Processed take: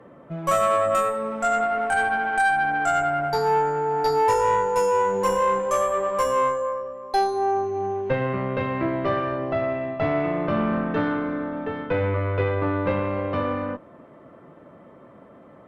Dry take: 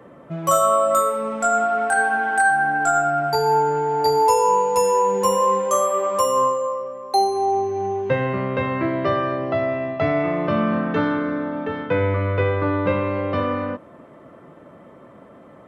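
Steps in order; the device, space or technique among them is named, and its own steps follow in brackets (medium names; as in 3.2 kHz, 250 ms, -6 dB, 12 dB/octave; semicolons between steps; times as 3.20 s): tube preamp driven hard (valve stage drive 12 dB, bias 0.55; treble shelf 4.5 kHz -8 dB)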